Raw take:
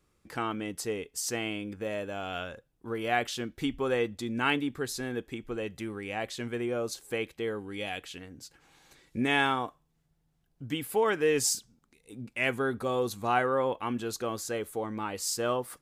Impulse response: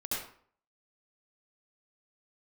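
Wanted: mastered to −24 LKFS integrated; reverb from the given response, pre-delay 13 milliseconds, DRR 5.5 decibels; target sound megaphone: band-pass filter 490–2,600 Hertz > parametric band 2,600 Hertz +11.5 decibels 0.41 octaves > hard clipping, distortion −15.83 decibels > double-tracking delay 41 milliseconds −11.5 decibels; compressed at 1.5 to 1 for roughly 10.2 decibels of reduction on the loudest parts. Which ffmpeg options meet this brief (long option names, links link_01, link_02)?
-filter_complex "[0:a]acompressor=threshold=-51dB:ratio=1.5,asplit=2[link_01][link_02];[1:a]atrim=start_sample=2205,adelay=13[link_03];[link_02][link_03]afir=irnorm=-1:irlink=0,volume=-9.5dB[link_04];[link_01][link_04]amix=inputs=2:normalize=0,highpass=490,lowpass=2600,equalizer=frequency=2600:width_type=o:width=0.41:gain=11.5,asoftclip=type=hard:threshold=-29.5dB,asplit=2[link_05][link_06];[link_06]adelay=41,volume=-11.5dB[link_07];[link_05][link_07]amix=inputs=2:normalize=0,volume=16dB"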